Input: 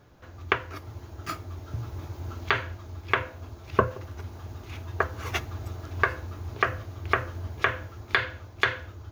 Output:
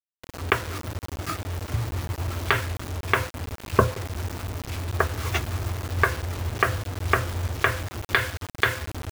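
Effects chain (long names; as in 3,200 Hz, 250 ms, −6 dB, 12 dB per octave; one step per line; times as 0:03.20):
low-shelf EQ 220 Hz +6 dB
bit reduction 6 bits
level +2 dB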